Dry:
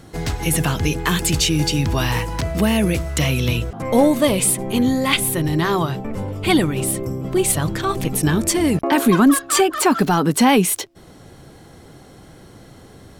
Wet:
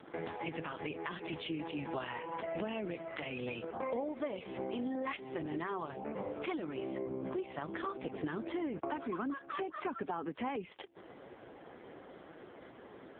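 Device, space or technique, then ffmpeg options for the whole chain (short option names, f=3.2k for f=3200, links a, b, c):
voicemail: -af "highpass=330,lowpass=2.7k,acompressor=threshold=-33dB:ratio=10,volume=-1dB" -ar 8000 -c:a libopencore_amrnb -b:a 4750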